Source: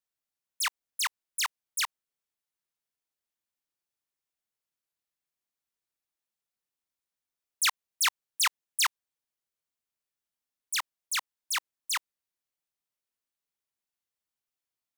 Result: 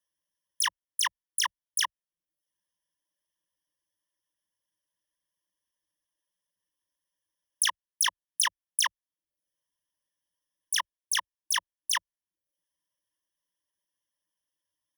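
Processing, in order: compressor, threshold -27 dBFS, peak gain reduction 6 dB; ripple EQ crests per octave 1.2, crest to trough 18 dB; reverb removal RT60 0.51 s

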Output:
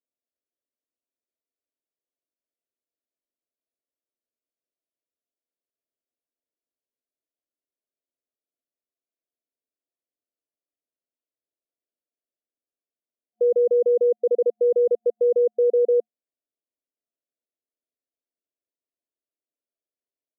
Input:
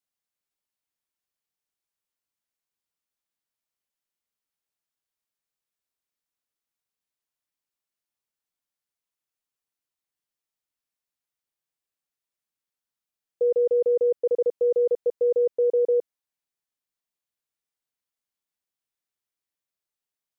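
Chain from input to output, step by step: FFT band-pass 220–720 Hz; gain +2.5 dB

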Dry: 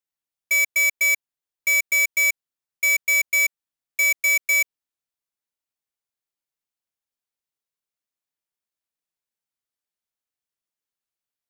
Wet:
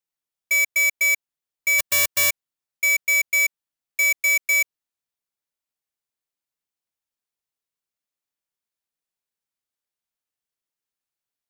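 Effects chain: 1.78–2.29 spectral whitening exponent 0.1

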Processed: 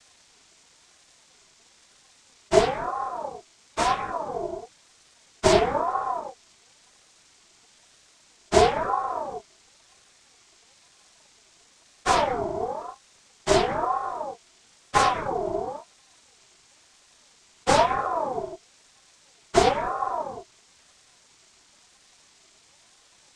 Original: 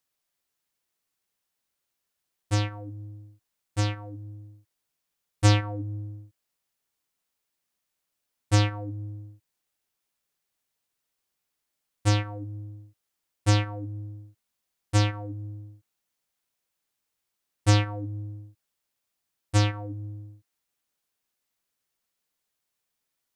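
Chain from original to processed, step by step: per-bin compression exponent 0.6; noise vocoder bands 8; ring modulator with a swept carrier 720 Hz, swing 30%, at 1 Hz; gain +4.5 dB

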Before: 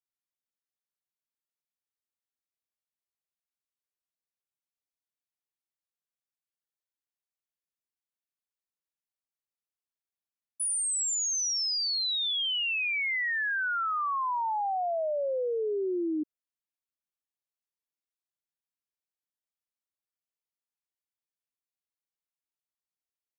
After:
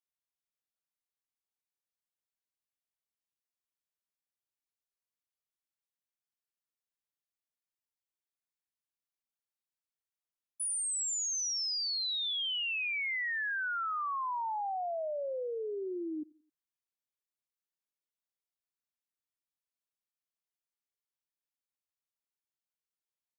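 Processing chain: bell 340 Hz -3 dB 1.7 oct; on a send: feedback echo 88 ms, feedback 41%, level -23 dB; on the sum: gain -4.5 dB

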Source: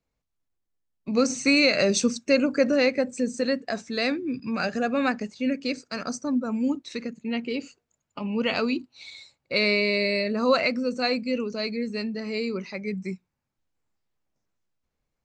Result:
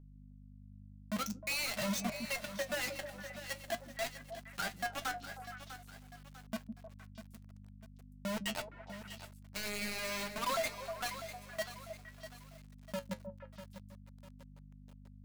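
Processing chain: per-bin expansion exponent 2; low-pass opened by the level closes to 950 Hz, open at -22.5 dBFS; elliptic band-stop 200–650 Hz, stop band 40 dB; high shelf 2100 Hz -5.5 dB; limiter -28.5 dBFS, peak gain reduction 10 dB; sample gate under -35 dBFS; hum 50 Hz, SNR 15 dB; flange 0.48 Hz, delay 6.8 ms, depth 4.3 ms, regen +62%; soft clip -39.5 dBFS, distortion -13 dB; on a send: delay with a stepping band-pass 0.155 s, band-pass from 230 Hz, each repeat 1.4 oct, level -4 dB; on the sum: lo-fi delay 0.647 s, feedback 55%, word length 10-bit, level -11 dB; gain +10.5 dB

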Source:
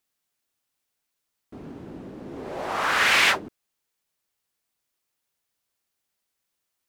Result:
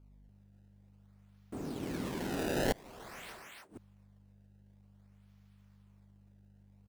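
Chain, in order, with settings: decimation with a swept rate 23×, swing 160% 0.51 Hz; hum 50 Hz, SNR 29 dB; soft clip -15.5 dBFS, distortion -14 dB; tapped delay 41/74/116/290 ms -19.5/-11/-18.5/-3 dB; flipped gate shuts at -20 dBFS, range -28 dB

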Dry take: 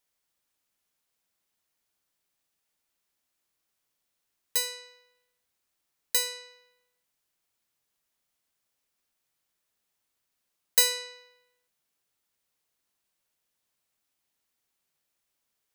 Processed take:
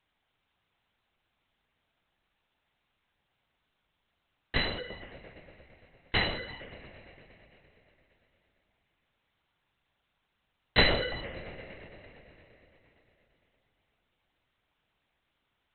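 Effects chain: 4.59–6.45 HPF 440 Hz 6 dB/oct; dark delay 0.115 s, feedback 81%, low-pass 1500 Hz, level -9 dB; LPC vocoder at 8 kHz whisper; gain +8.5 dB

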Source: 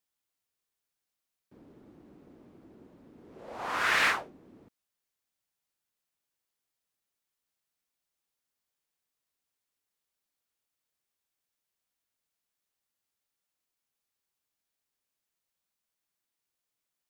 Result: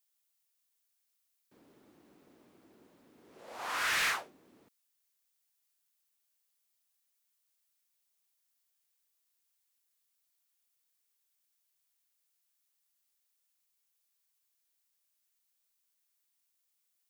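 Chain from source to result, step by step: tilt +3 dB/oct; soft clip -23.5 dBFS, distortion -10 dB; gain -3 dB

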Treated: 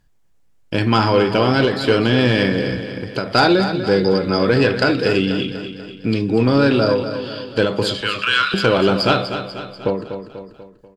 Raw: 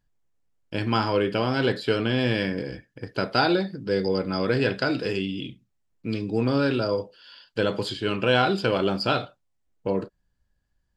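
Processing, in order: 8.01–8.54 Chebyshev high-pass 1100 Hz, order 6; in parallel at -1 dB: compressor, threshold -32 dBFS, peak gain reduction 14.5 dB; on the sum: sine folder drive 3 dB, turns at -5 dBFS; on a send: feedback echo 0.244 s, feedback 53%, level -10 dB; on the sum: ending taper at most 100 dB/s

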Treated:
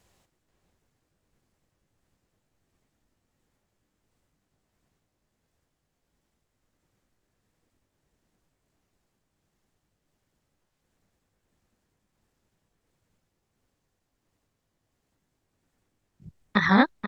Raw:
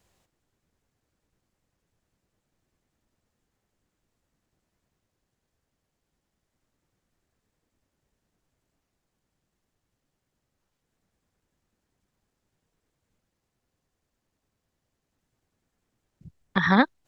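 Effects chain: repeated pitch sweeps +1 st, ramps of 0.724 s; vibrato 9.5 Hz 21 cents; outdoor echo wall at 83 m, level -7 dB; gain +3 dB

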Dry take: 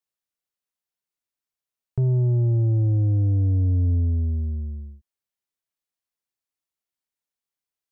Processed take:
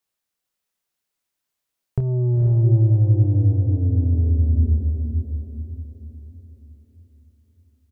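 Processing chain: compressor, threshold -25 dBFS, peak gain reduction 6 dB; doubler 27 ms -9 dB; diffused feedback echo 0.49 s, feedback 45%, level -4.5 dB; gain +7 dB

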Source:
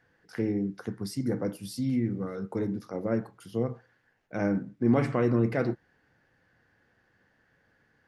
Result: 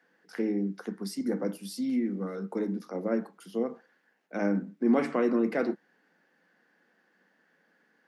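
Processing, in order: steep high-pass 170 Hz 72 dB/oct

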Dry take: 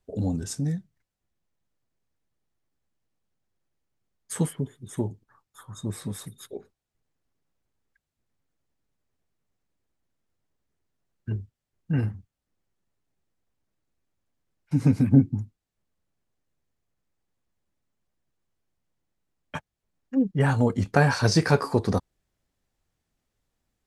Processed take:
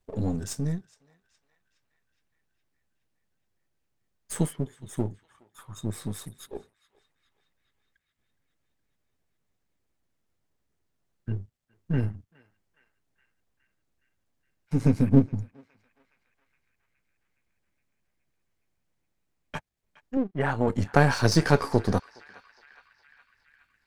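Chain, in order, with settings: half-wave gain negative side -7 dB; 20.17–20.68 tone controls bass -8 dB, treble -11 dB; narrowing echo 0.416 s, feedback 73%, band-pass 2200 Hz, level -19 dB; gain +1.5 dB

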